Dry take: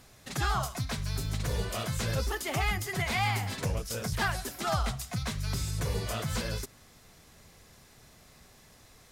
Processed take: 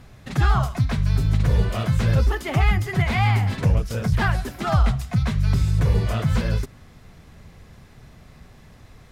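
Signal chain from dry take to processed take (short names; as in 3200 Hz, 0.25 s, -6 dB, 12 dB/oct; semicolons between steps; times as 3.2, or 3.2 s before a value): tone controls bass +8 dB, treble -11 dB; gain +6 dB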